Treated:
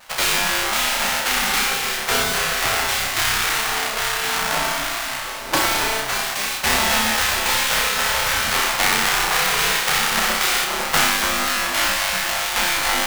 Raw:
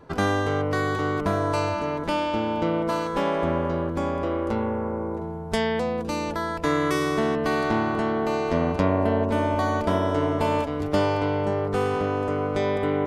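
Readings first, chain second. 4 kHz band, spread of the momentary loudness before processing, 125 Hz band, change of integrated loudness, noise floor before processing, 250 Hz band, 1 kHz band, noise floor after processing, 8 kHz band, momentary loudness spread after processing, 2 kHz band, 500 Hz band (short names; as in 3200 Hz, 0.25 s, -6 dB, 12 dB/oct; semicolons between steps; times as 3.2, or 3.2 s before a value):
+18.5 dB, 4 LU, -8.5 dB, +6.5 dB, -31 dBFS, -8.5 dB, +4.5 dB, -27 dBFS, +24.5 dB, 4 LU, +13.0 dB, -6.0 dB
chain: half-waves squared off; spectral gate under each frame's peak -15 dB weak; flutter echo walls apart 5.4 m, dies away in 0.43 s; gain +6 dB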